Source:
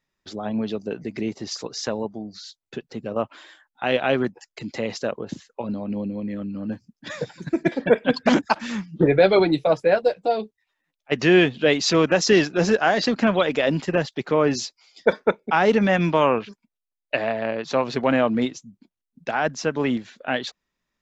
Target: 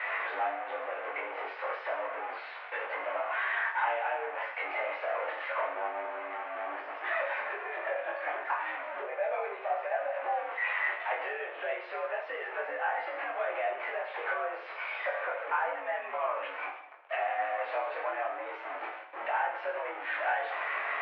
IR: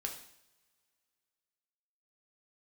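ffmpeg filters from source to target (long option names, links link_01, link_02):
-filter_complex "[0:a]aeval=exprs='val(0)+0.5*0.133*sgn(val(0))':channel_layout=same,acompressor=threshold=-22dB:ratio=10,flanger=delay=18.5:depth=4.1:speed=0.31[link_01];[1:a]atrim=start_sample=2205,asetrate=39249,aresample=44100[link_02];[link_01][link_02]afir=irnorm=-1:irlink=0,highpass=frequency=520:width_type=q:width=0.5412,highpass=frequency=520:width_type=q:width=1.307,lowpass=frequency=2300:width_type=q:width=0.5176,lowpass=frequency=2300:width_type=q:width=0.7071,lowpass=frequency=2300:width_type=q:width=1.932,afreqshift=77,volume=-1.5dB"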